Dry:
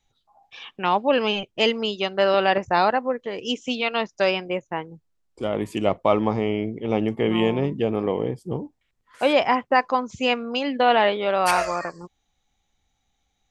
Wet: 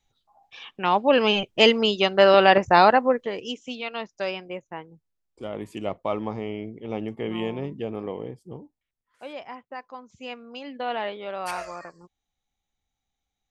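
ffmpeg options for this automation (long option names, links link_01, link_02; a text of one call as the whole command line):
ffmpeg -i in.wav -af "volume=12dB,afade=type=in:start_time=0.73:duration=0.84:silence=0.501187,afade=type=out:start_time=3.12:duration=0.42:silence=0.251189,afade=type=out:start_time=8.01:duration=1.23:silence=0.281838,afade=type=in:start_time=9.9:duration=1.04:silence=0.398107" out.wav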